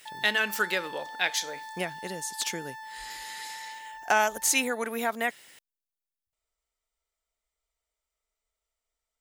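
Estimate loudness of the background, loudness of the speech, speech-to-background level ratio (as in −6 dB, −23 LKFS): −42.0 LKFS, −28.5 LKFS, 13.5 dB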